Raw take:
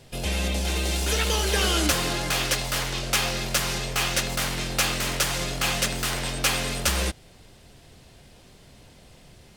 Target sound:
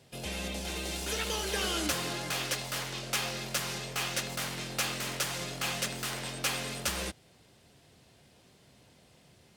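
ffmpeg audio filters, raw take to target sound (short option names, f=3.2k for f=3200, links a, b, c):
-af "highpass=94,volume=-8dB"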